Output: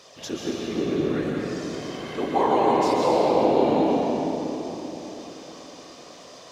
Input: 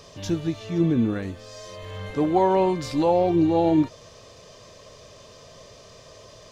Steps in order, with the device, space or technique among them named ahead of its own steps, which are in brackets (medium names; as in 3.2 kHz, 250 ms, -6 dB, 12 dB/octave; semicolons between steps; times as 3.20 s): whispering ghost (whisper effect; high-pass 580 Hz 6 dB/octave; reverberation RT60 3.8 s, pre-delay 118 ms, DRR -3 dB)